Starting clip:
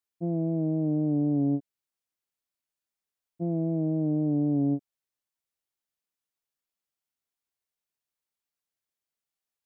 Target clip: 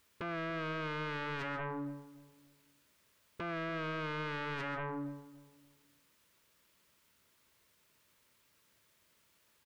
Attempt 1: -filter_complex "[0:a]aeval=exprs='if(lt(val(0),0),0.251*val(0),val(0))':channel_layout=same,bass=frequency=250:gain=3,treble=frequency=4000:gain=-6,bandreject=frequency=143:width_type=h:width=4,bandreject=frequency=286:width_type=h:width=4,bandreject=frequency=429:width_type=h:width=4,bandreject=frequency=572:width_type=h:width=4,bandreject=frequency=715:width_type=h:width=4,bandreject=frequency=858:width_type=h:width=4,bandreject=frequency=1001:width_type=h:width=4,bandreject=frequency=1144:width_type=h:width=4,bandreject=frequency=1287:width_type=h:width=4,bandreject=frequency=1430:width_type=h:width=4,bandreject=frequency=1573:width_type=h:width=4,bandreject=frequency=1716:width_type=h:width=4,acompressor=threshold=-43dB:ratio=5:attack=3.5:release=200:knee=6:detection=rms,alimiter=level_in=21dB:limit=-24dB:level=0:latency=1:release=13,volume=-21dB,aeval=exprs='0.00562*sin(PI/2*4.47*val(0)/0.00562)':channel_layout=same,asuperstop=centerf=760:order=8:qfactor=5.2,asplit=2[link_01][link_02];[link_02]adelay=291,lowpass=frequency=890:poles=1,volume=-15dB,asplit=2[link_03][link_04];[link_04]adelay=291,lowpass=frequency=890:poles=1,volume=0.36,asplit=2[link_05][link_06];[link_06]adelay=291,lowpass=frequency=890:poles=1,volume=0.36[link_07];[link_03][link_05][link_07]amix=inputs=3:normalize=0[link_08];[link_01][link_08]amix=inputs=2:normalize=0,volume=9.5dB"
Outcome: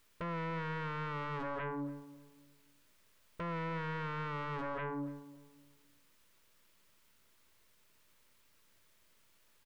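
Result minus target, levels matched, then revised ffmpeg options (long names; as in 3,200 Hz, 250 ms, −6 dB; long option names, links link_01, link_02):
125 Hz band +3.0 dB
-filter_complex "[0:a]aeval=exprs='if(lt(val(0),0),0.251*val(0),val(0))':channel_layout=same,bass=frequency=250:gain=3,treble=frequency=4000:gain=-6,bandreject=frequency=143:width_type=h:width=4,bandreject=frequency=286:width_type=h:width=4,bandreject=frequency=429:width_type=h:width=4,bandreject=frequency=572:width_type=h:width=4,bandreject=frequency=715:width_type=h:width=4,bandreject=frequency=858:width_type=h:width=4,bandreject=frequency=1001:width_type=h:width=4,bandreject=frequency=1144:width_type=h:width=4,bandreject=frequency=1287:width_type=h:width=4,bandreject=frequency=1430:width_type=h:width=4,bandreject=frequency=1573:width_type=h:width=4,bandreject=frequency=1716:width_type=h:width=4,acompressor=threshold=-43dB:ratio=5:attack=3.5:release=200:knee=6:detection=rms,highpass=45,alimiter=level_in=21dB:limit=-24dB:level=0:latency=1:release=13,volume=-21dB,aeval=exprs='0.00562*sin(PI/2*4.47*val(0)/0.00562)':channel_layout=same,asuperstop=centerf=760:order=8:qfactor=5.2,asplit=2[link_01][link_02];[link_02]adelay=291,lowpass=frequency=890:poles=1,volume=-15dB,asplit=2[link_03][link_04];[link_04]adelay=291,lowpass=frequency=890:poles=1,volume=0.36,asplit=2[link_05][link_06];[link_06]adelay=291,lowpass=frequency=890:poles=1,volume=0.36[link_07];[link_03][link_05][link_07]amix=inputs=3:normalize=0[link_08];[link_01][link_08]amix=inputs=2:normalize=0,volume=9.5dB"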